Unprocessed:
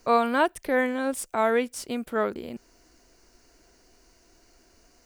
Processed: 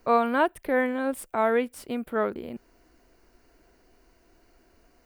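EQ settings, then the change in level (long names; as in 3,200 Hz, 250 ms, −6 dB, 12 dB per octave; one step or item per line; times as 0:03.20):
parametric band 6,200 Hz −12.5 dB 1.3 octaves
0.0 dB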